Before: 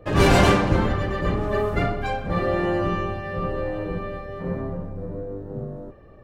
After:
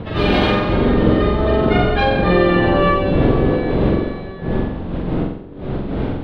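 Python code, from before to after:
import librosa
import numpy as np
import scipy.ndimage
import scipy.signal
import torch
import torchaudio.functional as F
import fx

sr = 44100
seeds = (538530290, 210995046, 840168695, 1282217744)

p1 = fx.doppler_pass(x, sr, speed_mps=12, closest_m=6.4, pass_at_s=2.49)
p2 = fx.dmg_wind(p1, sr, seeds[0], corner_hz=310.0, level_db=-31.0)
p3 = fx.dynamic_eq(p2, sr, hz=380.0, q=0.87, threshold_db=-35.0, ratio=4.0, max_db=5)
p4 = fx.over_compress(p3, sr, threshold_db=-27.0, ratio=-1.0)
p5 = p3 + (p4 * librosa.db_to_amplitude(-1.5))
p6 = fx.high_shelf_res(p5, sr, hz=5200.0, db=-13.0, q=3.0)
p7 = p6 + fx.room_flutter(p6, sr, wall_m=7.7, rt60_s=0.68, dry=0)
y = p7 * librosa.db_to_amplitude(3.0)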